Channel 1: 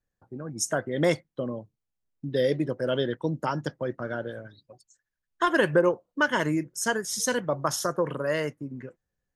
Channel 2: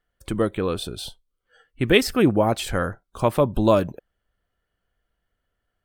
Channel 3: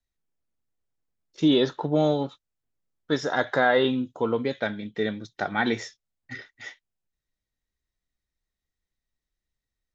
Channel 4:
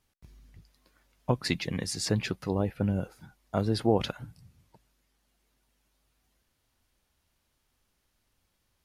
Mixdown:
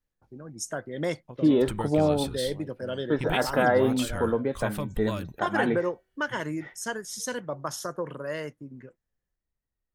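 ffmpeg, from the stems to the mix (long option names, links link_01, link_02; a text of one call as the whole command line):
ffmpeg -i stem1.wav -i stem2.wav -i stem3.wav -i stem4.wav -filter_complex "[0:a]volume=-6dB[link_01];[1:a]equalizer=frequency=500:width=0.47:gain=-13.5,acompressor=threshold=-34dB:ratio=2.5,adelay=1400,volume=2dB[link_02];[2:a]lowpass=1500,bandreject=frequency=378.5:width_type=h:width=4,bandreject=frequency=757:width_type=h:width=4,bandreject=frequency=1135.5:width_type=h:width=4,bandreject=frequency=1514:width_type=h:width=4,bandreject=frequency=1892.5:width_type=h:width=4,bandreject=frequency=2271:width_type=h:width=4,bandreject=frequency=2649.5:width_type=h:width=4,bandreject=frequency=3028:width_type=h:width=4,bandreject=frequency=3406.5:width_type=h:width=4,bandreject=frequency=3785:width_type=h:width=4,bandreject=frequency=4163.5:width_type=h:width=4,bandreject=frequency=4542:width_type=h:width=4,bandreject=frequency=4920.5:width_type=h:width=4,bandreject=frequency=5299:width_type=h:width=4,bandreject=frequency=5677.5:width_type=h:width=4,bandreject=frequency=6056:width_type=h:width=4,bandreject=frequency=6434.5:width_type=h:width=4,bandreject=frequency=6813:width_type=h:width=4,bandreject=frequency=7191.5:width_type=h:width=4,bandreject=frequency=7570:width_type=h:width=4,bandreject=frequency=7948.5:width_type=h:width=4,bandreject=frequency=8327:width_type=h:width=4,bandreject=frequency=8705.5:width_type=h:width=4,bandreject=frequency=9084:width_type=h:width=4,bandreject=frequency=9462.5:width_type=h:width=4,bandreject=frequency=9841:width_type=h:width=4,bandreject=frequency=10219.5:width_type=h:width=4,bandreject=frequency=10598:width_type=h:width=4,bandreject=frequency=10976.5:width_type=h:width=4,bandreject=frequency=11355:width_type=h:width=4,bandreject=frequency=11733.5:width_type=h:width=4,bandreject=frequency=12112:width_type=h:width=4,volume=-0.5dB[link_03];[3:a]volume=-18.5dB[link_04];[link_01][link_02][link_03][link_04]amix=inputs=4:normalize=0" out.wav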